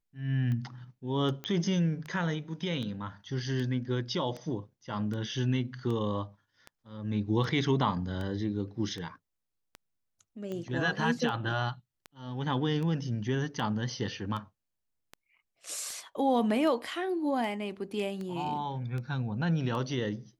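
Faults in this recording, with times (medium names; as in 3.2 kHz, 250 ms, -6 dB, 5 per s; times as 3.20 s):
tick 78 rpm -26 dBFS
1.44 s: pop -21 dBFS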